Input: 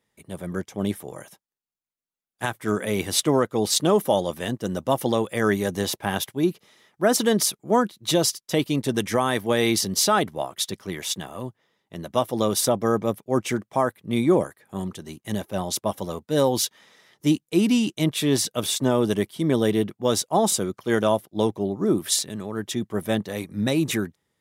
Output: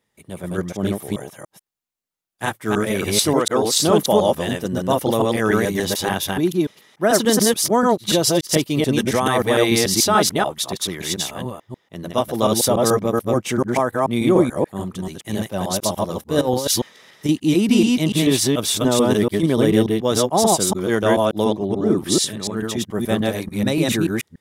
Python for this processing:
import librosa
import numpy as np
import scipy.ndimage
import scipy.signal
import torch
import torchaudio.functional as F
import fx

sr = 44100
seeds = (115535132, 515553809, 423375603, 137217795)

y = fx.reverse_delay(x, sr, ms=145, wet_db=0.0)
y = fx.low_shelf(y, sr, hz=190.0, db=-9.5, at=(3.33, 3.76))
y = fx.over_compress(y, sr, threshold_db=-21.0, ratio=-0.5, at=(16.41, 17.29))
y = fx.peak_eq(y, sr, hz=14000.0, db=-8.0, octaves=0.85, at=(21.44, 22.57))
y = y * 10.0 ** (2.0 / 20.0)